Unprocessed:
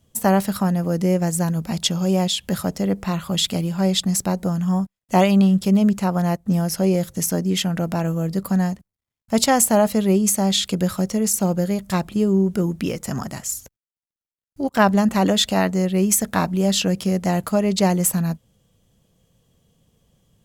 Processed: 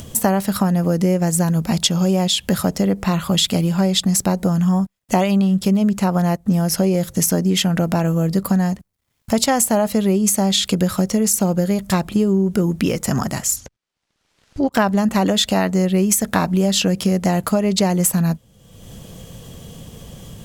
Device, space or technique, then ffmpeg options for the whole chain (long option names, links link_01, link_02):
upward and downward compression: -filter_complex "[0:a]acompressor=mode=upward:threshold=-29dB:ratio=2.5,acompressor=threshold=-21dB:ratio=6,asplit=3[link_01][link_02][link_03];[link_01]afade=type=out:start_time=13.55:duration=0.02[link_04];[link_02]lowpass=5400,afade=type=in:start_time=13.55:duration=0.02,afade=type=out:start_time=14.71:duration=0.02[link_05];[link_03]afade=type=in:start_time=14.71:duration=0.02[link_06];[link_04][link_05][link_06]amix=inputs=3:normalize=0,volume=7.5dB"